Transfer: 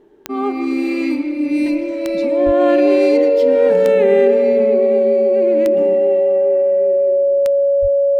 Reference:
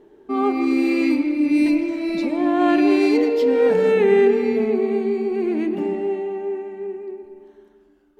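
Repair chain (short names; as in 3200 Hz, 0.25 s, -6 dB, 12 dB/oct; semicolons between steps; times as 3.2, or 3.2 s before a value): de-click; notch 560 Hz, Q 30; 2.45–2.57 HPF 140 Hz 24 dB/oct; 7.81–7.93 HPF 140 Hz 24 dB/oct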